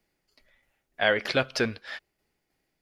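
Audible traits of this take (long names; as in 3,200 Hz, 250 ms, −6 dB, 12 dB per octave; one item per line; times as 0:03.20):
tremolo saw down 3.2 Hz, depth 40%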